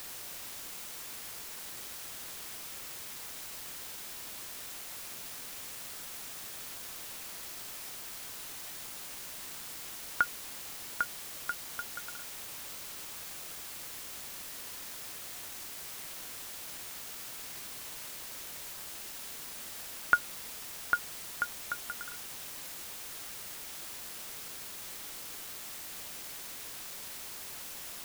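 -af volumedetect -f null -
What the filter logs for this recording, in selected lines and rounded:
mean_volume: -41.6 dB
max_volume: -9.7 dB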